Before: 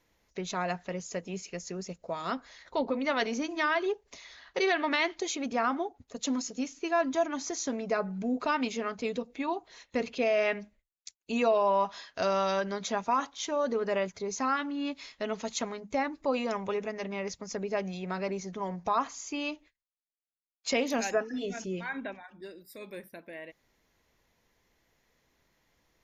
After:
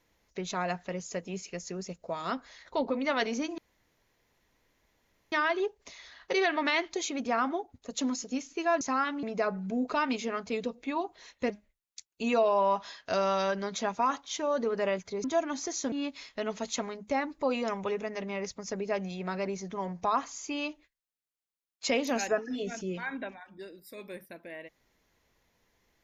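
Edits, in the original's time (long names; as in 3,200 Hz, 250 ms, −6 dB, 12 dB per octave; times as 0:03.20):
0:03.58: splice in room tone 1.74 s
0:07.07–0:07.75: swap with 0:14.33–0:14.75
0:10.02–0:10.59: remove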